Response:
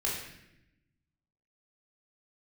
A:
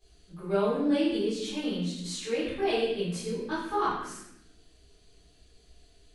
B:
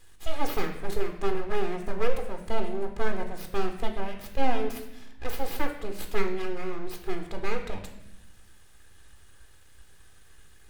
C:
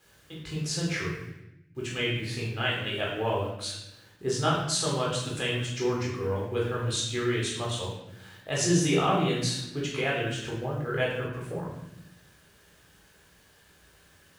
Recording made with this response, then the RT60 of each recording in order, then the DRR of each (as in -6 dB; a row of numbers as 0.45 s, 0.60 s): C; 0.85 s, 0.85 s, 0.85 s; -13.5 dB, 4.5 dB, -4.5 dB